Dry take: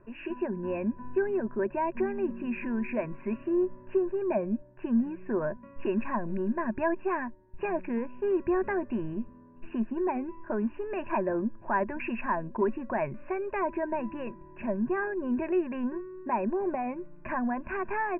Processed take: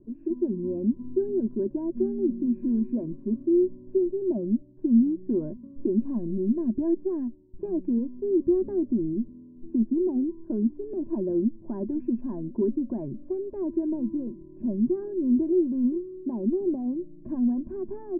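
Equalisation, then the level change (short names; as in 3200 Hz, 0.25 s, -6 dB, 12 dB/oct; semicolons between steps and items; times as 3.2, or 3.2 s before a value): synth low-pass 300 Hz, resonance Q 3.7; air absorption 370 m; 0.0 dB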